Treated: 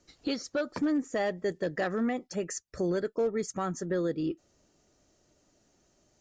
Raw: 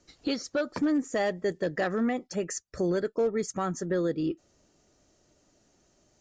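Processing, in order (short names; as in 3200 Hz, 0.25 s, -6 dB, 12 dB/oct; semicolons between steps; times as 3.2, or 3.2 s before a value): 0.93–1.38 high shelf 7600 Hz -7.5 dB; gain -2 dB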